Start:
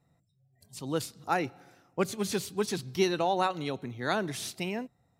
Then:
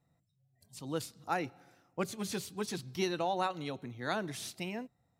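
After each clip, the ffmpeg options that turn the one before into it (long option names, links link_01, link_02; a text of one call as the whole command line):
ffmpeg -i in.wav -af "bandreject=frequency=400:width=12,volume=-5dB" out.wav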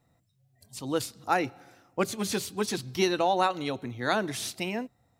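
ffmpeg -i in.wav -af "equalizer=frequency=160:width_type=o:width=0.27:gain=-9.5,volume=8dB" out.wav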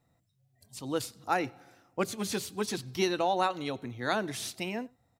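ffmpeg -i in.wav -filter_complex "[0:a]asplit=2[link_01][link_02];[link_02]adelay=93.29,volume=-27dB,highshelf=frequency=4000:gain=-2.1[link_03];[link_01][link_03]amix=inputs=2:normalize=0,volume=-3dB" out.wav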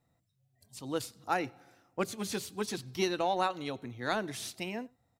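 ffmpeg -i in.wav -af "aeval=exprs='0.2*(cos(1*acos(clip(val(0)/0.2,-1,1)))-cos(1*PI/2))+0.00355*(cos(7*acos(clip(val(0)/0.2,-1,1)))-cos(7*PI/2))':channel_layout=same,volume=-2dB" out.wav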